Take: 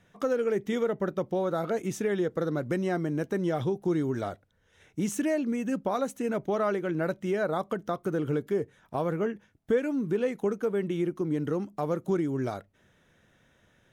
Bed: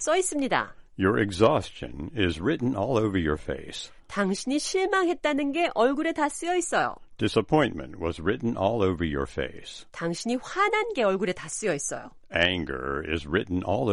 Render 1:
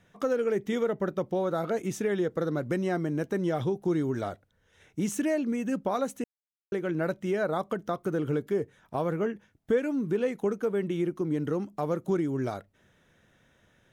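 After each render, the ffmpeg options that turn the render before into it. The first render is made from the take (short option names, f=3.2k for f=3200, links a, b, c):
-filter_complex "[0:a]asplit=3[a][b][c];[a]atrim=end=6.24,asetpts=PTS-STARTPTS,afade=t=out:st=6.236:d=0.004:c=hsin[d];[b]atrim=start=6.24:end=6.72,asetpts=PTS-STARTPTS,volume=0[e];[c]atrim=start=6.72,asetpts=PTS-STARTPTS,afade=t=in:d=0.004:c=hsin[f];[d][e][f]concat=n=3:v=0:a=1"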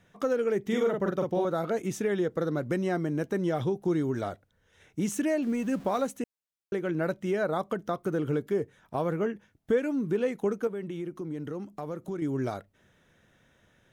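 -filter_complex "[0:a]asettb=1/sr,asplit=3[a][b][c];[a]atrim=end=0.624[d];[b]atrim=start=0.62:end=1.45,asetpts=PTS-STARTPTS,afade=t=in:d=0.004:c=qsin,afade=t=out:st=0.826:d=0.004:c=qsin,asplit=2[e][f];[f]adelay=45,volume=-3dB[g];[e][g]amix=inputs=2:normalize=0,atrim=end_sample=36603[h];[c]atrim=start=1.446[i];[d][h]acrossfade=d=0.004:c1=hsin:c2=qsin[j];[j][i]acrossfade=d=0.004:c1=qsin:c2=hsin,asettb=1/sr,asplit=3[k][l][m];[k]atrim=end=5.424[n];[l]atrim=start=5.42:end=6.07,asetpts=PTS-STARTPTS,afade=t=in:d=0.004:c=qsin,afade=t=out:st=0.646:d=0.004:c=qsin,aeval=exprs='val(0)+0.5*0.00708*sgn(val(0))':c=same[o];[m]atrim=start=6.066[p];[n][o]acrossfade=d=0.004:c1=hsin:c2=qsin[q];[q][p]acrossfade=d=0.004:c1=qsin:c2=hsin,asettb=1/sr,asplit=3[r][s][t];[r]atrim=end=10.674[u];[s]atrim=start=10.67:end=12.22,asetpts=PTS-STARTPTS,afade=t=in:d=0.004:c=qsin,afade=t=out:st=1.546:d=0.004:c=qsin,acompressor=threshold=-37dB:ratio=2:attack=3.2:release=140:knee=1:detection=peak[v];[t]atrim=start=12.216[w];[u][v]acrossfade=d=0.004:c1=hsin:c2=qsin[x];[x][w]acrossfade=d=0.004:c1=qsin:c2=hsin"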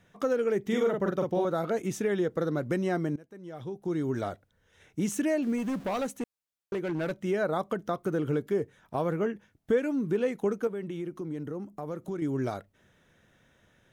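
-filter_complex "[0:a]asettb=1/sr,asplit=3[a][b][c];[a]atrim=end=5.584[d];[b]atrim=start=5.58:end=7.16,asetpts=PTS-STARTPTS,afade=t=in:d=0.004:c=qsin,afade=t=out:st=1.576:d=0.004:c=qsin,asoftclip=type=hard:threshold=-27dB[e];[c]atrim=start=7.156[f];[d][e]acrossfade=d=0.004:c1=hsin:c2=qsin[g];[g][f]acrossfade=d=0.004:c1=qsin:c2=hsin,asettb=1/sr,asplit=3[h][i][j];[h]atrim=end=11.434[k];[i]atrim=start=11.43:end=11.88,asetpts=PTS-STARTPTS,afade=t=in:d=0.004:c=qsin,afade=t=out:st=0.446:d=0.004:c=qsin,equalizer=f=3.5k:w=0.67:g=-8.5[l];[j]atrim=start=11.876[m];[k][l]acrossfade=d=0.004:c1=hsin:c2=qsin[n];[n][m]acrossfade=d=0.004:c1=qsin:c2=hsin,asplit=2[o][p];[o]atrim=end=3.16,asetpts=PTS-STARTPTS,afade=t=out:st=3.156:d=0.004:c=hsin:silence=0.0841395[q];[p]atrim=start=3.16,asetpts=PTS-STARTPTS,afade=t=in:d=0.97:c=qua:silence=0.0841395[r];[q][r]concat=n=2:v=0:a=1"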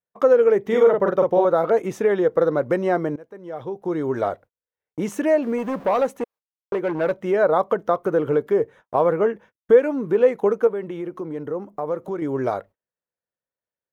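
-af "agate=range=-40dB:threshold=-51dB:ratio=16:detection=peak,equalizer=f=500:t=o:w=1:g=11,equalizer=f=1k:t=o:w=1:g=10,equalizer=f=2k:t=o:w=1:g=4,equalizer=f=8k:t=o:w=1:g=-4"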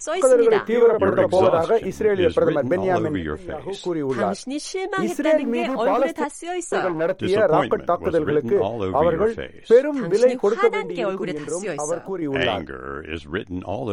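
-filter_complex "[1:a]volume=-1.5dB[a];[0:a][a]amix=inputs=2:normalize=0"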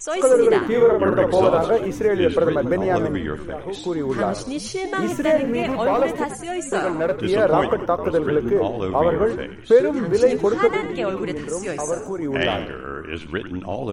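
-filter_complex "[0:a]asplit=6[a][b][c][d][e][f];[b]adelay=93,afreqshift=-81,volume=-11dB[g];[c]adelay=186,afreqshift=-162,volume=-17.6dB[h];[d]adelay=279,afreqshift=-243,volume=-24.1dB[i];[e]adelay=372,afreqshift=-324,volume=-30.7dB[j];[f]adelay=465,afreqshift=-405,volume=-37.2dB[k];[a][g][h][i][j][k]amix=inputs=6:normalize=0"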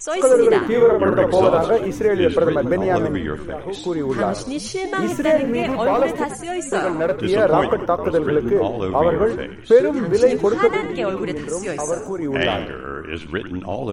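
-af "volume=1.5dB"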